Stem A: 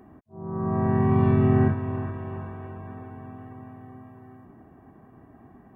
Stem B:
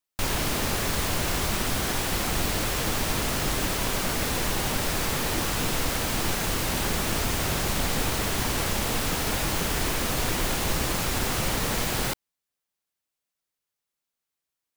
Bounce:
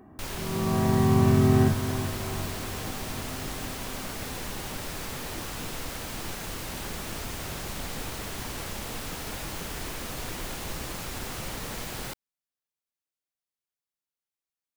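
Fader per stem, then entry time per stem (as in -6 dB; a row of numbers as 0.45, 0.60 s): -0.5, -9.0 dB; 0.00, 0.00 s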